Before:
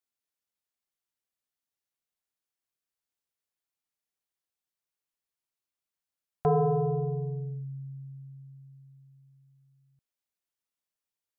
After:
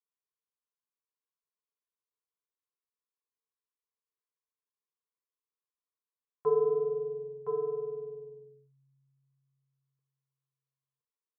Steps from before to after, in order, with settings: two resonant band-passes 690 Hz, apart 1.2 oct; doubling 47 ms -11.5 dB; delay 1016 ms -6 dB; trim +1 dB

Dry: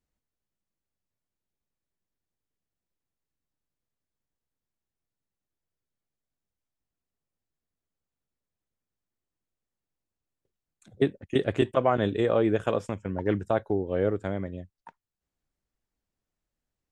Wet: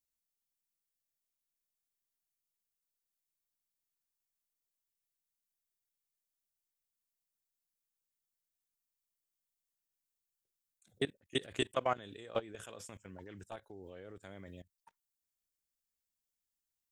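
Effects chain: pre-emphasis filter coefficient 0.9; level held to a coarse grid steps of 20 dB; trim +10 dB

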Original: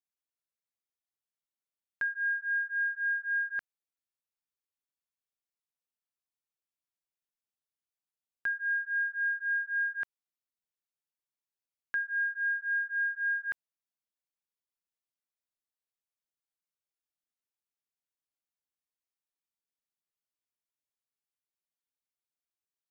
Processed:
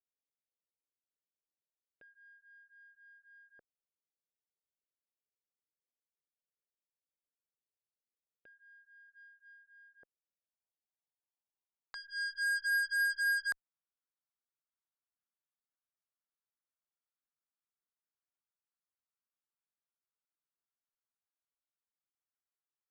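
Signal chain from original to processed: 9.08–9.59 s: transient shaper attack +12 dB, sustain -3 dB; in parallel at +3 dB: peak limiter -32 dBFS, peak gain reduction 11 dB; on the sum: low-pass sweep 510 Hz -> 1.4 kHz, 10.03–12.58 s; Chebyshev shaper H 3 -12 dB, 5 -24 dB, 6 -38 dB, 7 -17 dB, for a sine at -16 dBFS; trim -8 dB

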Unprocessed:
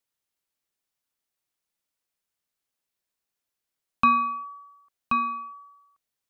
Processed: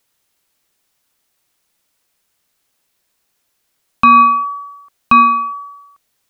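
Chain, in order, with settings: loudness maximiser +20 dB; trim -2 dB

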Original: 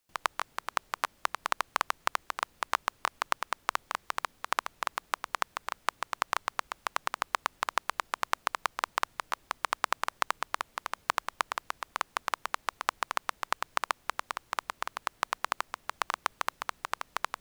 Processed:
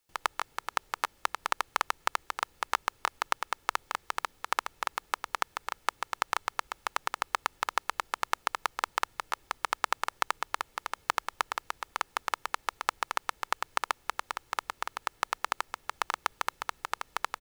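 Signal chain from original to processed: comb 2.3 ms, depth 33%

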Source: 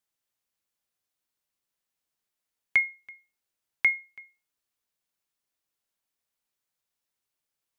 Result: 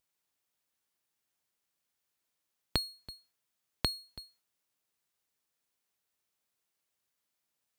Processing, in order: full-wave rectifier; high-pass 46 Hz 12 dB/octave; compression 12:1, threshold -33 dBFS, peak gain reduction 11 dB; trim +5.5 dB

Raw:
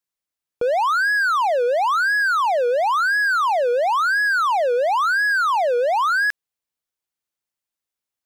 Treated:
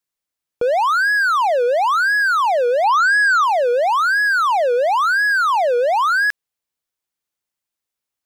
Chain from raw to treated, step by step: 2.84–3.44 s: waveshaping leveller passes 2; trim +2.5 dB

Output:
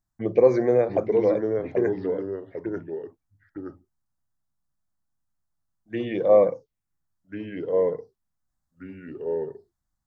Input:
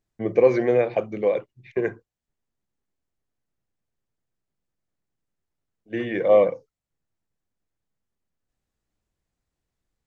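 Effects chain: touch-sensitive phaser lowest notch 450 Hz, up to 2.9 kHz, full sweep at -20 dBFS; ever faster or slower copies 666 ms, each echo -2 st, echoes 2, each echo -6 dB

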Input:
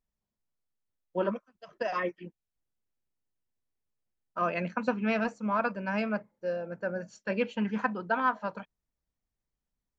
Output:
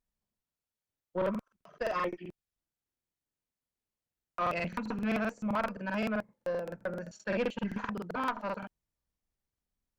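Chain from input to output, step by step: valve stage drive 23 dB, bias 0.35; crackling interface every 0.13 s, samples 2048, repeat, from 0.65 s

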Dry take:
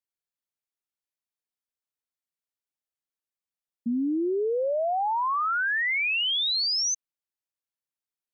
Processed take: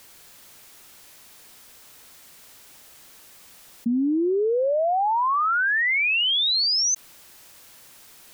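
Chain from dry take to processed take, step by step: level flattener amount 100%; trim +4 dB

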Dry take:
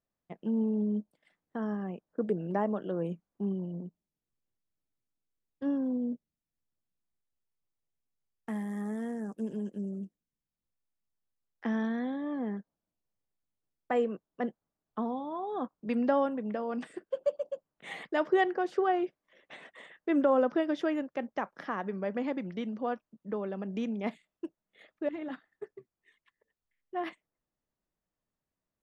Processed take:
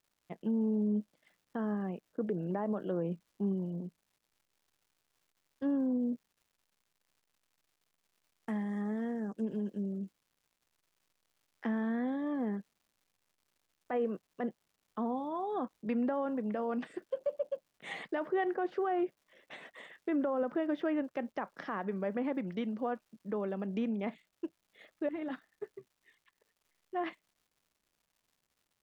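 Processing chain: low-pass that closes with the level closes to 2.4 kHz, closed at -28.5 dBFS; peak limiter -25 dBFS, peak gain reduction 9.5 dB; crackle 310 per s -62 dBFS

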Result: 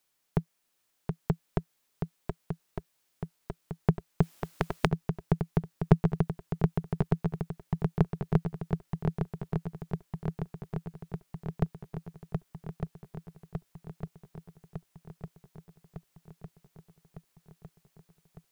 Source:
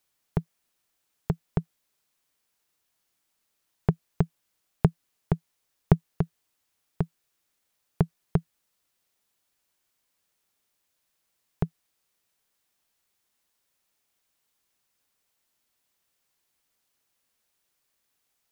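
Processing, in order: peaking EQ 68 Hz -15 dB 0.5 oct; shuffle delay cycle 1205 ms, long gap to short 1.5:1, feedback 65%, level -5.5 dB; 4.22–4.87 s: spectrum-flattening compressor 2:1

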